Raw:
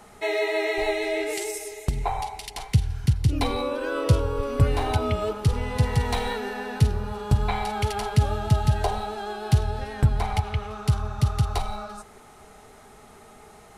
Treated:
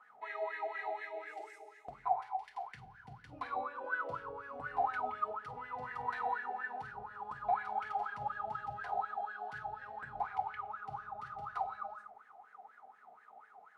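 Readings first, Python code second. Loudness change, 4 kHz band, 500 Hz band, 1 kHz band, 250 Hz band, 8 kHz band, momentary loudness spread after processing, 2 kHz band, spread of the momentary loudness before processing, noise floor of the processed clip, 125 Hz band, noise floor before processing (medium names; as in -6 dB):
-14.0 dB, under -25 dB, -16.5 dB, -5.5 dB, -28.0 dB, under -30 dB, 19 LU, -9.0 dB, 8 LU, -62 dBFS, -35.5 dB, -50 dBFS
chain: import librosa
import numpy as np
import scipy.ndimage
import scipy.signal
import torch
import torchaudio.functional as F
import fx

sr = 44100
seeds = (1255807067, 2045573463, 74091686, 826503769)

y = fx.room_shoebox(x, sr, seeds[0], volume_m3=1000.0, walls='furnished', distance_m=1.9)
y = fx.wah_lfo(y, sr, hz=4.1, low_hz=700.0, high_hz=1700.0, q=13.0)
y = y * librosa.db_to_amplitude(2.0)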